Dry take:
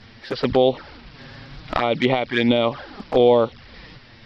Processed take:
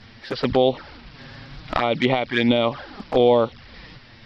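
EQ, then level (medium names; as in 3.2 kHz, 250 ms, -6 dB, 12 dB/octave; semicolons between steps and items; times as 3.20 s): peaking EQ 430 Hz -2 dB; 0.0 dB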